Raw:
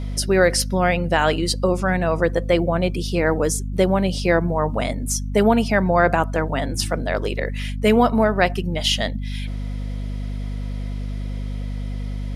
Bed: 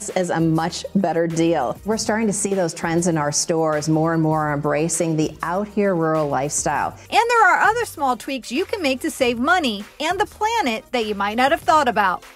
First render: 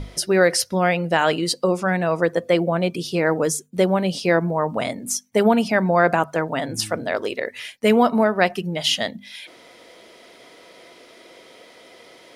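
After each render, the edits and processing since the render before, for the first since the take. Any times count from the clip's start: notches 50/100/150/200/250 Hz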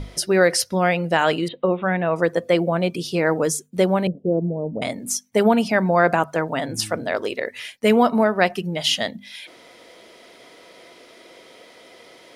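1.48–2.16 Chebyshev low-pass 3700 Hz, order 8; 4.07–4.82 inverse Chebyshev low-pass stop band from 1800 Hz, stop band 60 dB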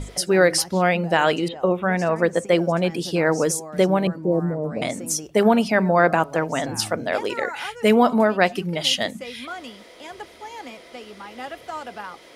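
add bed -17.5 dB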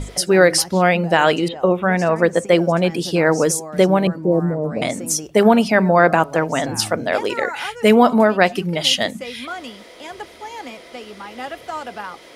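gain +4 dB; limiter -1 dBFS, peak gain reduction 1.5 dB

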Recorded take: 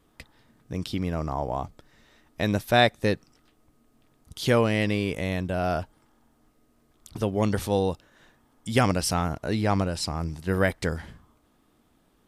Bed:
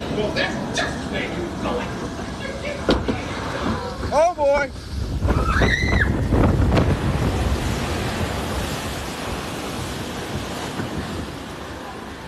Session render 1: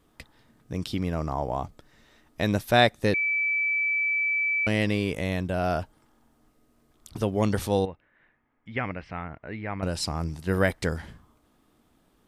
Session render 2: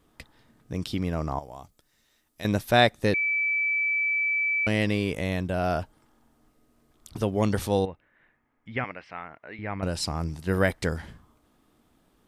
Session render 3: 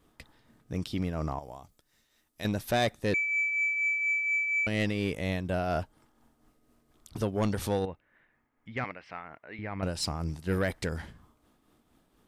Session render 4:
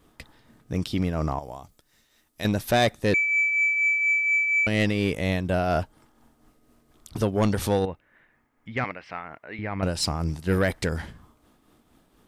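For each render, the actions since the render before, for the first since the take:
3.14–4.67 bleep 2310 Hz -22.5 dBFS; 7.85–9.83 ladder low-pass 2400 Hz, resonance 60%
1.39–2.45 pre-emphasis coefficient 0.8; 8.84–9.59 HPF 650 Hz 6 dB/oct
tremolo triangle 4.2 Hz, depth 50%; soft clip -20 dBFS, distortion -15 dB
gain +6 dB

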